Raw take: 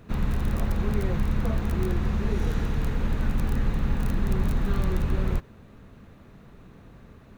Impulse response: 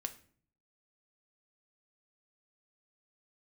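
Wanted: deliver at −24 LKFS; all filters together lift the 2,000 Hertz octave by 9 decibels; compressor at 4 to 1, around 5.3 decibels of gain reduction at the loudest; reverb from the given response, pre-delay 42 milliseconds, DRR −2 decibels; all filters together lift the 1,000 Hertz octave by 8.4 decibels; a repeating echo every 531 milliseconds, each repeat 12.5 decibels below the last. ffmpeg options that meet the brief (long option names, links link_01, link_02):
-filter_complex "[0:a]equalizer=frequency=1000:width_type=o:gain=8,equalizer=frequency=2000:width_type=o:gain=8.5,acompressor=threshold=-25dB:ratio=4,aecho=1:1:531|1062|1593:0.237|0.0569|0.0137,asplit=2[link_01][link_02];[1:a]atrim=start_sample=2205,adelay=42[link_03];[link_02][link_03]afir=irnorm=-1:irlink=0,volume=3.5dB[link_04];[link_01][link_04]amix=inputs=2:normalize=0,volume=3dB"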